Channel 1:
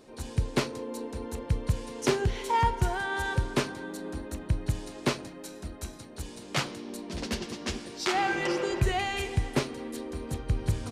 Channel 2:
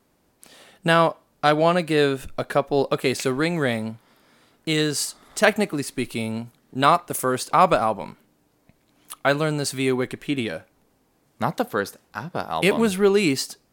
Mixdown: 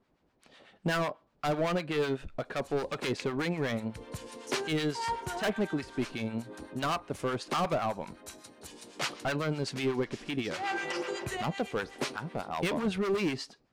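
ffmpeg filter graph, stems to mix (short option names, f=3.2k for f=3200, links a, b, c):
-filter_complex "[0:a]highpass=f=460:p=1,adelay=2450,volume=0.5dB[a];[1:a]lowpass=3.9k,asoftclip=type=hard:threshold=-19.5dB,volume=-3.5dB,asplit=2[b][c];[c]apad=whole_len=589196[d];[a][d]sidechaincompress=threshold=-39dB:ratio=8:attack=20:release=193[e];[e][b]amix=inputs=2:normalize=0,acrossover=split=890[f][g];[f]aeval=exprs='val(0)*(1-0.7/2+0.7/2*cos(2*PI*8*n/s))':c=same[h];[g]aeval=exprs='val(0)*(1-0.7/2-0.7/2*cos(2*PI*8*n/s))':c=same[i];[h][i]amix=inputs=2:normalize=0"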